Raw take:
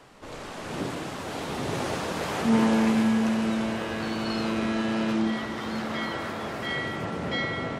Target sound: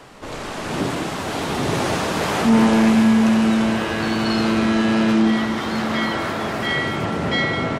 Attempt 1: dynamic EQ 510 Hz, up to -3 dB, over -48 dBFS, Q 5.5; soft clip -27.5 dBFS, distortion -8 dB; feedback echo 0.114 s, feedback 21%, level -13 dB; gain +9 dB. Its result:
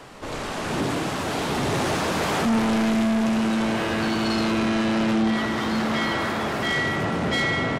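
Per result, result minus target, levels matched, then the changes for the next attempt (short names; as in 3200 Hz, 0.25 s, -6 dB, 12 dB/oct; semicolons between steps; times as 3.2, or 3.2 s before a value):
echo 85 ms early; soft clip: distortion +12 dB
change: feedback echo 0.199 s, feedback 21%, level -13 dB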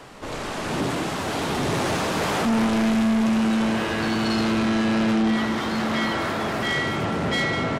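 soft clip: distortion +12 dB
change: soft clip -16.5 dBFS, distortion -21 dB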